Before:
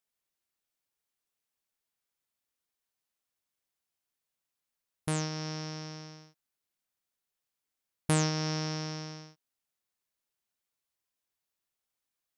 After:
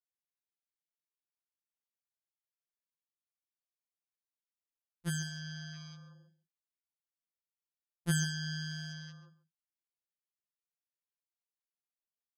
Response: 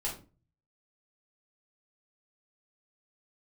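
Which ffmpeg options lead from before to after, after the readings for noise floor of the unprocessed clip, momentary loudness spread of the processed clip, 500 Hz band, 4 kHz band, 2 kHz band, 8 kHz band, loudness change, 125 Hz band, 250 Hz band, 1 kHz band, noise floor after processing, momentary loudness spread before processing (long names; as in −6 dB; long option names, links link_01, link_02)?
below −85 dBFS, 19 LU, −18.0 dB, −3.5 dB, +1.0 dB, −3.0 dB, −4.0 dB, −3.5 dB, −5.5 dB, −17.5 dB, below −85 dBFS, 16 LU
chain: -af "afwtdn=0.00398,aecho=1:1:139:0.15,afftfilt=real='re*2.83*eq(mod(b,8),0)':imag='im*2.83*eq(mod(b,8),0)':win_size=2048:overlap=0.75"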